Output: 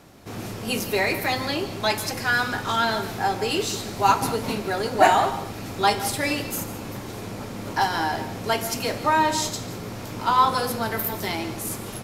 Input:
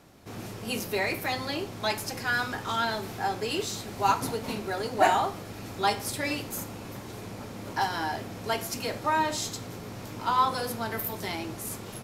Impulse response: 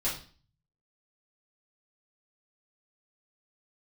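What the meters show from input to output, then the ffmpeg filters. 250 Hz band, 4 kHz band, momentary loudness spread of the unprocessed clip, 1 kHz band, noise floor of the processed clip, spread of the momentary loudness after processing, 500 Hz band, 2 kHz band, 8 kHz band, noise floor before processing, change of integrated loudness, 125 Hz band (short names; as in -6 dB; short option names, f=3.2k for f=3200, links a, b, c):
+6.0 dB, +5.5 dB, 15 LU, +6.0 dB, -35 dBFS, 14 LU, +6.0 dB, +5.5 dB, +5.5 dB, -41 dBFS, +6.0 dB, +5.5 dB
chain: -filter_complex "[0:a]asplit=2[a][b];[1:a]atrim=start_sample=2205,adelay=140[c];[b][c]afir=irnorm=-1:irlink=0,volume=-19dB[d];[a][d]amix=inputs=2:normalize=0,volume=5.5dB"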